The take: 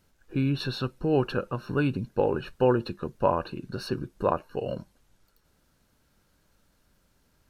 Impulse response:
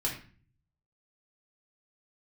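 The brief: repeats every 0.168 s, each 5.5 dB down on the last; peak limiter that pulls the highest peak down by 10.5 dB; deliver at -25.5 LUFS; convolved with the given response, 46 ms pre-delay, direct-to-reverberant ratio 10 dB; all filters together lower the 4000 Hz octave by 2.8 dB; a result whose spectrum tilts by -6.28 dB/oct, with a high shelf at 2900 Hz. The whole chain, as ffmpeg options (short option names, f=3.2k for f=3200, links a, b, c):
-filter_complex "[0:a]highshelf=f=2.9k:g=5.5,equalizer=f=4k:t=o:g=-7.5,alimiter=limit=-19dB:level=0:latency=1,aecho=1:1:168|336|504|672|840|1008|1176:0.531|0.281|0.149|0.079|0.0419|0.0222|0.0118,asplit=2[a][b];[1:a]atrim=start_sample=2205,adelay=46[c];[b][c]afir=irnorm=-1:irlink=0,volume=-15.5dB[d];[a][d]amix=inputs=2:normalize=0,volume=5dB"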